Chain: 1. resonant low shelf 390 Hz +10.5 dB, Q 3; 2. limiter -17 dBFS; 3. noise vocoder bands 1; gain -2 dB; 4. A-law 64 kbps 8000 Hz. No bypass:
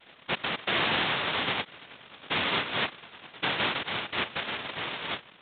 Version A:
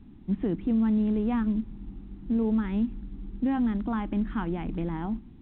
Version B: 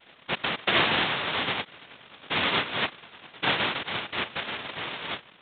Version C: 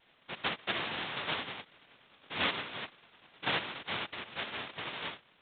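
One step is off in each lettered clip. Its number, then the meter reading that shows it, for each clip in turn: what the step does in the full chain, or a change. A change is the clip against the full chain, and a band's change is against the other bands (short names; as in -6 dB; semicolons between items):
3, 2 kHz band -21.0 dB; 2, crest factor change +3.5 dB; 1, crest factor change +5.5 dB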